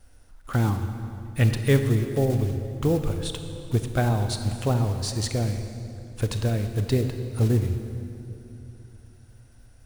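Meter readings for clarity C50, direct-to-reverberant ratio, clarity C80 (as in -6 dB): 7.5 dB, 7.0 dB, 8.5 dB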